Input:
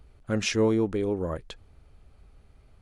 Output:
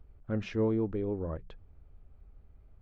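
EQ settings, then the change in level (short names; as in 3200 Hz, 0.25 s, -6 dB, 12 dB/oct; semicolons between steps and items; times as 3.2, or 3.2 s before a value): tape spacing loss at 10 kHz 35 dB; low shelf 96 Hz +6.5 dB; notches 60/120/180 Hz; -5.0 dB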